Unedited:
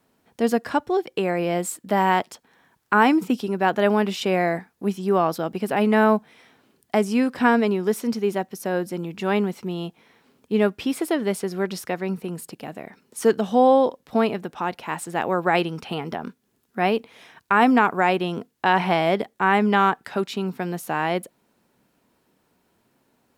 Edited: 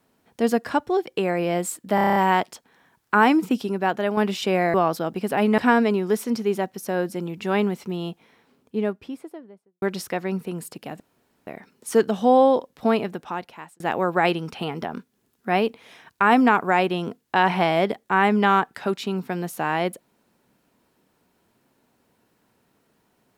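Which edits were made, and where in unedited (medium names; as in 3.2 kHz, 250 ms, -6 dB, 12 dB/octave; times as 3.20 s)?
1.95 s: stutter 0.03 s, 8 plays
3.46–3.96 s: fade out, to -7 dB
4.53–5.13 s: delete
5.97–7.35 s: delete
9.81–11.59 s: studio fade out
12.77 s: insert room tone 0.47 s
14.42–15.10 s: fade out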